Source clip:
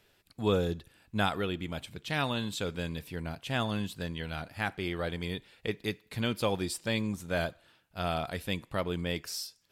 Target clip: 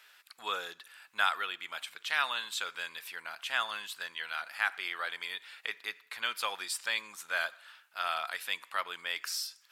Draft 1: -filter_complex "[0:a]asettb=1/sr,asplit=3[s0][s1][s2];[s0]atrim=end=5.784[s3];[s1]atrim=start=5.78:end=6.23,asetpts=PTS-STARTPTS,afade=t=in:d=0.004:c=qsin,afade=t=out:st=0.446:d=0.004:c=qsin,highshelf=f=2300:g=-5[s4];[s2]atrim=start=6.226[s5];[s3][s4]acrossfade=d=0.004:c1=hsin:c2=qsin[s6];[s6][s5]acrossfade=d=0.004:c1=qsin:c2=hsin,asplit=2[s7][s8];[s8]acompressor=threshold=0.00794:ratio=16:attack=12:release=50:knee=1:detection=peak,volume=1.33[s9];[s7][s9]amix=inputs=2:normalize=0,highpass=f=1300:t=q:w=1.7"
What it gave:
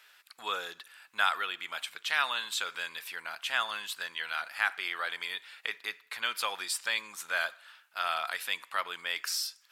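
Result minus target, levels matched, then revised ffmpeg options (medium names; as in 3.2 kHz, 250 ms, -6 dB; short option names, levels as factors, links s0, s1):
compression: peak gain reduction -11 dB
-filter_complex "[0:a]asettb=1/sr,asplit=3[s0][s1][s2];[s0]atrim=end=5.784[s3];[s1]atrim=start=5.78:end=6.23,asetpts=PTS-STARTPTS,afade=t=in:d=0.004:c=qsin,afade=t=out:st=0.446:d=0.004:c=qsin,highshelf=f=2300:g=-5[s4];[s2]atrim=start=6.226[s5];[s3][s4]acrossfade=d=0.004:c1=hsin:c2=qsin[s6];[s6][s5]acrossfade=d=0.004:c1=qsin:c2=hsin,asplit=2[s7][s8];[s8]acompressor=threshold=0.00211:ratio=16:attack=12:release=50:knee=1:detection=peak,volume=1.33[s9];[s7][s9]amix=inputs=2:normalize=0,highpass=f=1300:t=q:w=1.7"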